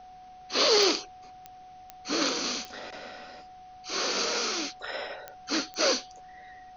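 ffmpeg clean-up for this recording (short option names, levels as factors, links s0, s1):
-af "adeclick=t=4,bandreject=f=740:w=30,agate=range=0.0891:threshold=0.00891"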